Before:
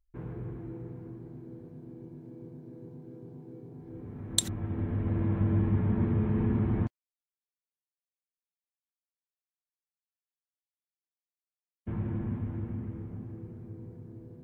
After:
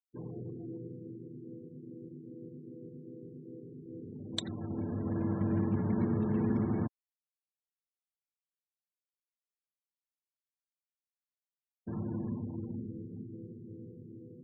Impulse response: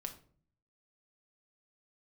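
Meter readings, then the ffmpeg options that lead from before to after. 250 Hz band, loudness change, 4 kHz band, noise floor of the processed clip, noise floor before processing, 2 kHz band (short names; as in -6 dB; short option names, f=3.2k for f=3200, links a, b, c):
-1.0 dB, -4.0 dB, -6.5 dB, under -85 dBFS, under -85 dBFS, -3.5 dB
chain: -af "highpass=150,lowpass=2.8k,acrusher=bits=5:mode=log:mix=0:aa=0.000001,afftfilt=real='re*gte(hypot(re,im),0.00708)':imag='im*gte(hypot(re,im),0.00708)':win_size=1024:overlap=0.75"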